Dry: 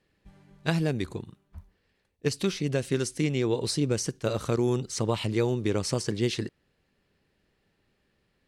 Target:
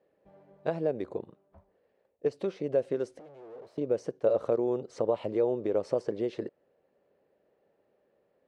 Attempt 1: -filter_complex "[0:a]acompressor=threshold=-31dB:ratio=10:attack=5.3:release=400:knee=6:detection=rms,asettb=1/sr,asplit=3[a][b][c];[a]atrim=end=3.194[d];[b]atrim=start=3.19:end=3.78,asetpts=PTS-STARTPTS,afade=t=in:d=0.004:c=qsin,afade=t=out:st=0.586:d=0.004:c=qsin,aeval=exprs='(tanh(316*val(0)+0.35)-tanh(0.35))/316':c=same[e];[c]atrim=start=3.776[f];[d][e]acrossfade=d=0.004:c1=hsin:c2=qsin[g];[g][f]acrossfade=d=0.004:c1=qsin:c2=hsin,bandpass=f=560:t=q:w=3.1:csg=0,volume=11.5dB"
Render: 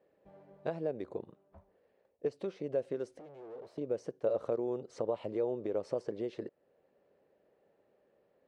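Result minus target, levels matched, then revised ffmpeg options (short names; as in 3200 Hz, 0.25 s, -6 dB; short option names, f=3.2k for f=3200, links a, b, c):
compressor: peak gain reduction +6.5 dB
-filter_complex "[0:a]acompressor=threshold=-24dB:ratio=10:attack=5.3:release=400:knee=6:detection=rms,asettb=1/sr,asplit=3[a][b][c];[a]atrim=end=3.194[d];[b]atrim=start=3.19:end=3.78,asetpts=PTS-STARTPTS,afade=t=in:d=0.004:c=qsin,afade=t=out:st=0.586:d=0.004:c=qsin,aeval=exprs='(tanh(316*val(0)+0.35)-tanh(0.35))/316':c=same[e];[c]atrim=start=3.776[f];[d][e]acrossfade=d=0.004:c1=hsin:c2=qsin[g];[g][f]acrossfade=d=0.004:c1=qsin:c2=hsin,bandpass=f=560:t=q:w=3.1:csg=0,volume=11.5dB"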